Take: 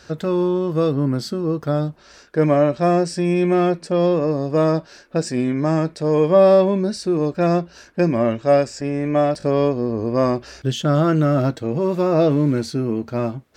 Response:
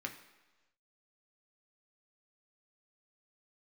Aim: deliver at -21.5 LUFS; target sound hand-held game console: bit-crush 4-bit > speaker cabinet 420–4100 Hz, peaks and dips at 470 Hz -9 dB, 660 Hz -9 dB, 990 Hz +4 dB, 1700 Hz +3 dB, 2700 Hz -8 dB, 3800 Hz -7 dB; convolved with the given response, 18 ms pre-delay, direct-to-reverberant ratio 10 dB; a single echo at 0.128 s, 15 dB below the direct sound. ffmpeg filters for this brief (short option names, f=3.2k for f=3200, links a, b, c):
-filter_complex "[0:a]aecho=1:1:128:0.178,asplit=2[a][b];[1:a]atrim=start_sample=2205,adelay=18[c];[b][c]afir=irnorm=-1:irlink=0,volume=-10.5dB[d];[a][d]amix=inputs=2:normalize=0,acrusher=bits=3:mix=0:aa=0.000001,highpass=420,equalizer=f=470:t=q:w=4:g=-9,equalizer=f=660:t=q:w=4:g=-9,equalizer=f=990:t=q:w=4:g=4,equalizer=f=1.7k:t=q:w=4:g=3,equalizer=f=2.7k:t=q:w=4:g=-8,equalizer=f=3.8k:t=q:w=4:g=-7,lowpass=f=4.1k:w=0.5412,lowpass=f=4.1k:w=1.3066,volume=4dB"